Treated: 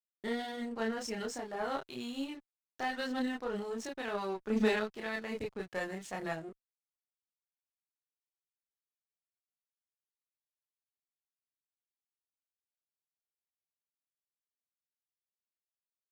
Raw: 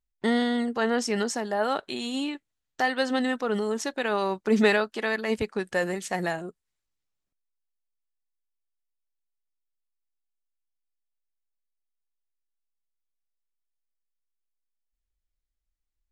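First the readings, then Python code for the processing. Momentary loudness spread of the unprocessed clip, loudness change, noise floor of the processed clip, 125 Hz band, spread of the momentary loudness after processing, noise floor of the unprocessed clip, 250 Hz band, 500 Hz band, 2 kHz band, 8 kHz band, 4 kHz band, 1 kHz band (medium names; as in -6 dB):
8 LU, -10.0 dB, under -85 dBFS, -9.5 dB, 9 LU, -83 dBFS, -9.5 dB, -10.0 dB, -10.5 dB, -11.0 dB, -10.5 dB, -10.0 dB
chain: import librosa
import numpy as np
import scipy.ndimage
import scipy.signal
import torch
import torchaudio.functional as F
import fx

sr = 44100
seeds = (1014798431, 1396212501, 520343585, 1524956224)

y = fx.chorus_voices(x, sr, voices=2, hz=0.13, base_ms=29, depth_ms=3.8, mix_pct=50)
y = fx.backlash(y, sr, play_db=-41.5)
y = fx.cheby_harmonics(y, sr, harmonics=(8,), levels_db=(-26,), full_scale_db=-10.0)
y = F.gain(torch.from_numpy(y), -7.0).numpy()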